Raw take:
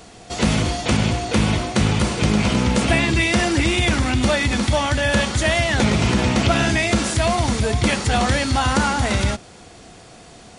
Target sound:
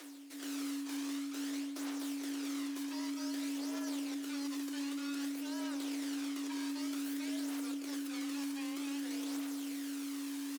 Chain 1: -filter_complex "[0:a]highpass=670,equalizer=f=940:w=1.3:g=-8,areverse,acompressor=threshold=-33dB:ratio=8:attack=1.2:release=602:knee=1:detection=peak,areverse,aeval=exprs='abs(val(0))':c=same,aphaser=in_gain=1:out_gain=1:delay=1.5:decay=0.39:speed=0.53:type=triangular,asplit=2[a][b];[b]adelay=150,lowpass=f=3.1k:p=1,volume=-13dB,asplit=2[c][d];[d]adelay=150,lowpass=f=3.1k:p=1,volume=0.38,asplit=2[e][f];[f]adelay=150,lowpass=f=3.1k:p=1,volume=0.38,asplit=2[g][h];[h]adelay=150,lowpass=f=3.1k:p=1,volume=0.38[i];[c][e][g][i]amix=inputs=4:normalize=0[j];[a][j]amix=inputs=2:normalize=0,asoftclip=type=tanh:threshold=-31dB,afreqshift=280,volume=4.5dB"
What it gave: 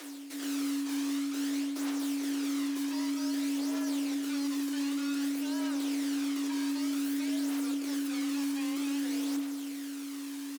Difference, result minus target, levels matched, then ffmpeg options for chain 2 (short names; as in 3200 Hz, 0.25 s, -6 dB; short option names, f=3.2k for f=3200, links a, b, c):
compressor: peak gain reduction -8.5 dB
-filter_complex "[0:a]highpass=670,equalizer=f=940:w=1.3:g=-8,areverse,acompressor=threshold=-42.5dB:ratio=8:attack=1.2:release=602:knee=1:detection=peak,areverse,aeval=exprs='abs(val(0))':c=same,aphaser=in_gain=1:out_gain=1:delay=1.5:decay=0.39:speed=0.53:type=triangular,asplit=2[a][b];[b]adelay=150,lowpass=f=3.1k:p=1,volume=-13dB,asplit=2[c][d];[d]adelay=150,lowpass=f=3.1k:p=1,volume=0.38,asplit=2[e][f];[f]adelay=150,lowpass=f=3.1k:p=1,volume=0.38,asplit=2[g][h];[h]adelay=150,lowpass=f=3.1k:p=1,volume=0.38[i];[c][e][g][i]amix=inputs=4:normalize=0[j];[a][j]amix=inputs=2:normalize=0,asoftclip=type=tanh:threshold=-31dB,afreqshift=280,volume=4.5dB"